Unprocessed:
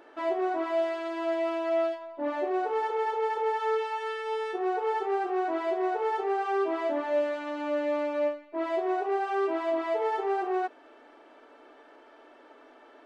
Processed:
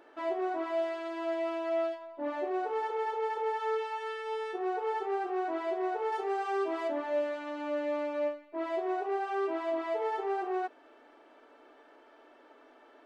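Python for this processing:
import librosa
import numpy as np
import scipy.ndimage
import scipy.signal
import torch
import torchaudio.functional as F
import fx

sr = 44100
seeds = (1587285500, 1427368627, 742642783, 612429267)

y = fx.high_shelf(x, sr, hz=5200.0, db=9.5, at=(6.12, 6.88))
y = F.gain(torch.from_numpy(y), -4.0).numpy()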